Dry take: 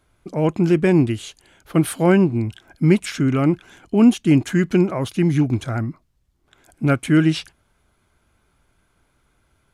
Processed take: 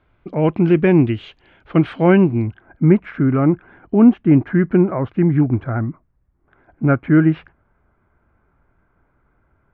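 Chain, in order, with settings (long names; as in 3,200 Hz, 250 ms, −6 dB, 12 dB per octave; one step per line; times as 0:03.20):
low-pass filter 3,000 Hz 24 dB per octave, from 0:02.47 1,800 Hz
level +2.5 dB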